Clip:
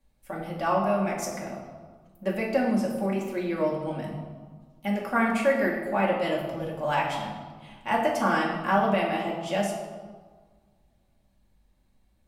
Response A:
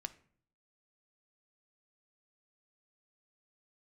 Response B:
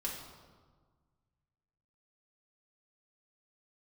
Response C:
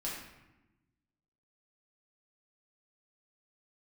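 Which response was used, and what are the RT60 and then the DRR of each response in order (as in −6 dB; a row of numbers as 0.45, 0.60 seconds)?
B; 0.55, 1.5, 1.0 seconds; 9.5, −4.0, −6.5 decibels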